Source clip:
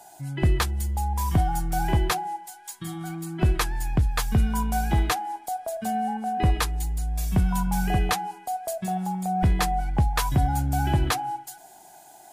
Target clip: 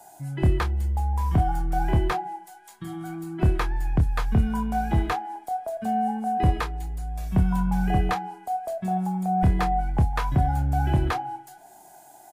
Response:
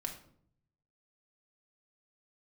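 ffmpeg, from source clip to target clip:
-filter_complex "[0:a]equalizer=frequency=3500:width_type=o:width=1.7:gain=-6,acrossover=split=400|4200[link_01][link_02][link_03];[link_03]acompressor=threshold=-51dB:ratio=10[link_04];[link_01][link_02][link_04]amix=inputs=3:normalize=0,asoftclip=type=hard:threshold=-13.5dB,asplit=2[link_05][link_06];[link_06]adelay=27,volume=-8.5dB[link_07];[link_05][link_07]amix=inputs=2:normalize=0"

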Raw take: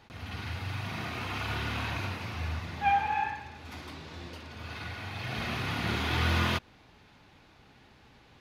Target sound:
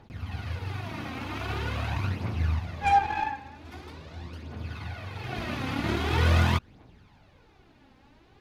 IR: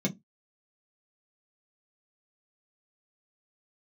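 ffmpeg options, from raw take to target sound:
-af "aeval=exprs='0.178*(cos(1*acos(clip(val(0)/0.178,-1,1)))-cos(1*PI/2))+0.0355*(cos(5*acos(clip(val(0)/0.178,-1,1)))-cos(5*PI/2))+0.0316*(cos(7*acos(clip(val(0)/0.178,-1,1)))-cos(7*PI/2))':channel_layout=same,aphaser=in_gain=1:out_gain=1:delay=3.9:decay=0.51:speed=0.44:type=triangular,tiltshelf=frequency=970:gain=4"

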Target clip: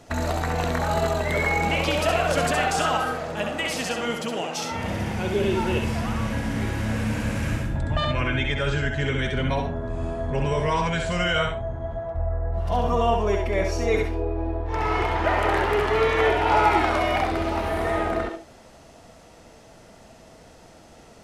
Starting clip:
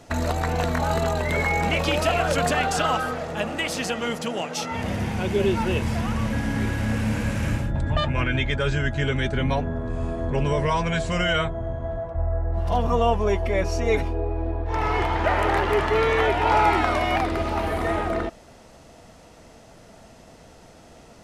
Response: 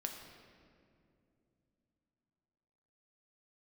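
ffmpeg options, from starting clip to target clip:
-filter_complex "[0:a]asplit=2[link_01][link_02];[link_02]highpass=frequency=300:width=0.5412,highpass=frequency=300:width=1.3066[link_03];[1:a]atrim=start_sample=2205,atrim=end_sample=3969,adelay=66[link_04];[link_03][link_04]afir=irnorm=-1:irlink=0,volume=-2dB[link_05];[link_01][link_05]amix=inputs=2:normalize=0,volume=-1.5dB"

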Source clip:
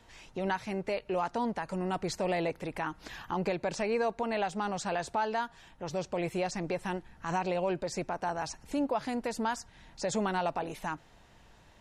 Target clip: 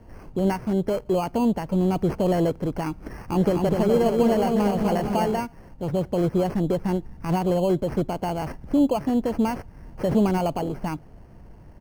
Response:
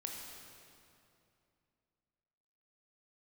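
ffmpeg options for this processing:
-filter_complex "[0:a]asplit=3[link_01][link_02][link_03];[link_01]afade=type=out:start_time=3.33:duration=0.02[link_04];[link_02]aecho=1:1:250|462.5|643.1|796.7|927.2:0.631|0.398|0.251|0.158|0.1,afade=type=in:start_time=3.33:duration=0.02,afade=type=out:start_time=5.38:duration=0.02[link_05];[link_03]afade=type=in:start_time=5.38:duration=0.02[link_06];[link_04][link_05][link_06]amix=inputs=3:normalize=0,acrusher=samples=12:mix=1:aa=0.000001,tiltshelf=frequency=770:gain=10,volume=5dB"

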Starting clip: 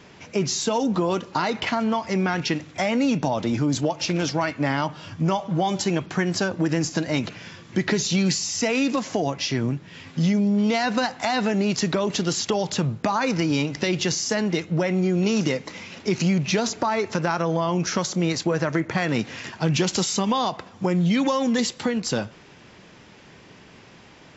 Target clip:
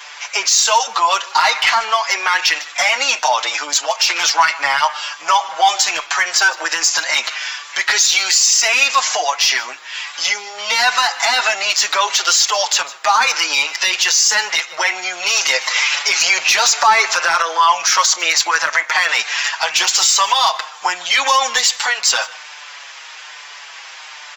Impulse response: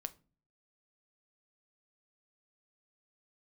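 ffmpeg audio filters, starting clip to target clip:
-filter_complex "[0:a]highpass=frequency=880:width=0.5412,highpass=frequency=880:width=1.3066,highshelf=frequency=4900:gain=5.5,asplit=2[link_01][link_02];[link_02]asoftclip=type=hard:threshold=-24dB,volume=-3.5dB[link_03];[link_01][link_03]amix=inputs=2:normalize=0,aecho=1:1:152:0.0708,asettb=1/sr,asplit=3[link_04][link_05][link_06];[link_04]atrim=end=15.454[link_07];[link_05]atrim=start=15.45:end=17.42,asetpts=PTS-STARTPTS,afade=type=in:duration=0.004:curve=qsin,afade=type=out:start_time=1.966:duration=0.004:curve=qsin,acontrast=54[link_08];[link_06]atrim=start=17.416[link_09];[link_07][link_08]acrossfade=duration=0.004:curve1=hsin:curve2=qsin[link_10];[link_10][link_09]acrossfade=duration=0.004:curve1=qsin:curve2=hsin,alimiter=level_in=16dB:limit=-1dB:release=50:level=0:latency=1,asplit=2[link_11][link_12];[link_12]adelay=6.2,afreqshift=-1.2[link_13];[link_11][link_13]amix=inputs=2:normalize=1,volume=-1dB"

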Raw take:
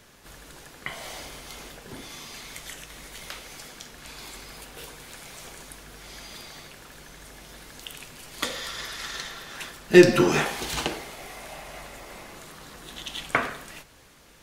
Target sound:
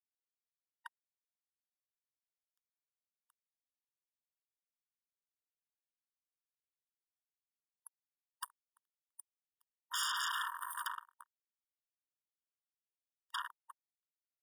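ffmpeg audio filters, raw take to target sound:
ffmpeg -i in.wav -filter_complex "[0:a]afftfilt=real='re*pow(10,13/40*sin(2*PI*(0.82*log(max(b,1)*sr/1024/100)/log(2)-(0.26)*(pts-256)/sr)))':imag='im*pow(10,13/40*sin(2*PI*(0.82*log(max(b,1)*sr/1024/100)/log(2)-(0.26)*(pts-256)/sr)))':win_size=1024:overlap=0.75,aeval=exprs='0.841*(cos(1*acos(clip(val(0)/0.841,-1,1)))-cos(1*PI/2))+0.0168*(cos(4*acos(clip(val(0)/0.841,-1,1)))-cos(4*PI/2))+0.335*(cos(8*acos(clip(val(0)/0.841,-1,1)))-cos(8*PI/2))':channel_layout=same,afftfilt=real='re*(1-between(b*sr/4096,750,9400))':imag='im*(1-between(b*sr/4096,750,9400))':win_size=4096:overlap=0.75,afwtdn=0.0398,asplit=2[link_01][link_02];[link_02]aecho=0:1:338|676|1014:0.0708|0.0368|0.0191[link_03];[link_01][link_03]amix=inputs=2:normalize=0,asetrate=40440,aresample=44100,atempo=1.09051,equalizer=frequency=130:width_type=o:width=0.77:gain=-2,asplit=2[link_04][link_05];[link_05]acompressor=threshold=-27dB:ratio=4,volume=-2dB[link_06];[link_04][link_06]amix=inputs=2:normalize=0,acrusher=bits=3:mix=0:aa=0.5,afftfilt=real='re*eq(mod(floor(b*sr/1024/940),2),1)':imag='im*eq(mod(floor(b*sr/1024/940),2),1)':win_size=1024:overlap=0.75,volume=-1dB" out.wav

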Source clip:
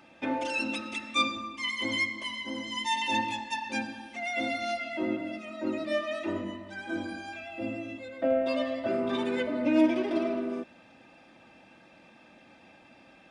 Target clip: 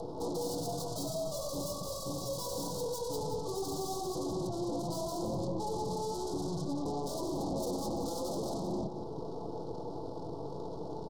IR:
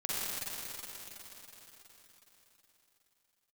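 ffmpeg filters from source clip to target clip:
-filter_complex "[0:a]afftfilt=real='re*lt(hypot(re,im),0.158)':imag='im*lt(hypot(re,im),0.158)':win_size=1024:overlap=0.75,highpass=frequency=460:poles=1,equalizer=frequency=900:width=2.5:gain=3.5,asplit=2[link_01][link_02];[link_02]acompressor=threshold=-52dB:ratio=8,volume=-1dB[link_03];[link_01][link_03]amix=inputs=2:normalize=0,asoftclip=type=tanh:threshold=-38dB,asetrate=24046,aresample=44100,atempo=1.83401,aeval=exprs='0.015*(cos(1*acos(clip(val(0)/0.015,-1,1)))-cos(1*PI/2))+0.00335*(cos(5*acos(clip(val(0)/0.015,-1,1)))-cos(5*PI/2))+0.00237*(cos(6*acos(clip(val(0)/0.015,-1,1)))-cos(6*PI/2))+0.00422*(cos(8*acos(clip(val(0)/0.015,-1,1)))-cos(8*PI/2))':channel_layout=same,atempo=1.2,asuperstop=centerf=2000:order=8:qfactor=0.59,aecho=1:1:179:0.355,volume=8dB"

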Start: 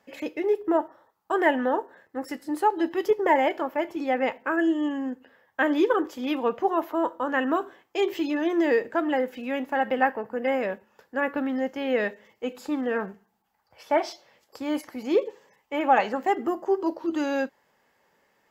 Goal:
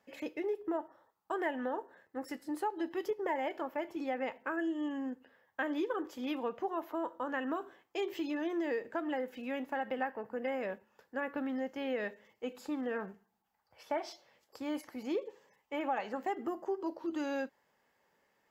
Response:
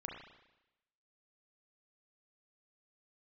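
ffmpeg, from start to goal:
-af "acompressor=threshold=-25dB:ratio=3,volume=-7.5dB"

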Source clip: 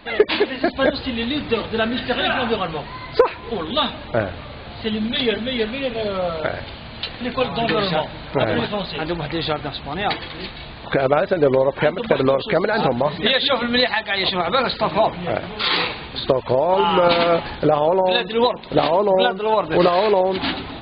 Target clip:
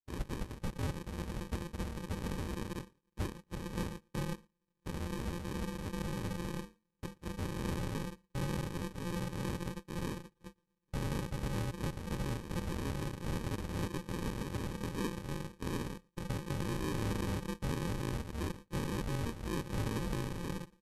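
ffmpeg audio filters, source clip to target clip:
ffmpeg -i in.wav -filter_complex "[0:a]agate=range=-43dB:threshold=-27dB:ratio=16:detection=peak,asubboost=boost=11:cutoff=79,afreqshift=-350,tremolo=f=270:d=0.974,acrusher=samples=39:mix=1:aa=0.000001,asoftclip=type=tanh:threshold=-20dB,aeval=exprs='0.1*(cos(1*acos(clip(val(0)/0.1,-1,1)))-cos(1*PI/2))+0.01*(cos(3*acos(clip(val(0)/0.1,-1,1)))-cos(3*PI/2))+0.00141*(cos(6*acos(clip(val(0)/0.1,-1,1)))-cos(6*PI/2))+0.000891*(cos(8*acos(clip(val(0)/0.1,-1,1)))-cos(8*PI/2))':channel_layout=same,asetrate=26990,aresample=44100,atempo=1.63392,asplit=2[link_01][link_02];[link_02]adelay=116.6,volume=-29dB,highshelf=frequency=4000:gain=-2.62[link_03];[link_01][link_03]amix=inputs=2:normalize=0,volume=-8.5dB" out.wav

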